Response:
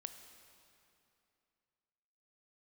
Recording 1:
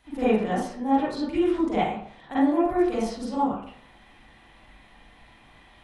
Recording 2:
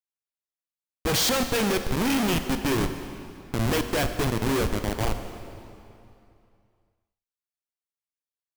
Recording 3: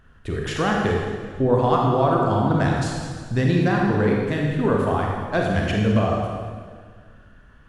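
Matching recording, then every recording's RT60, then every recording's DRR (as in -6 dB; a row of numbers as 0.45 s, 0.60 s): 2; 0.60 s, 2.7 s, 1.7 s; -11.5 dB, 7.5 dB, -1.5 dB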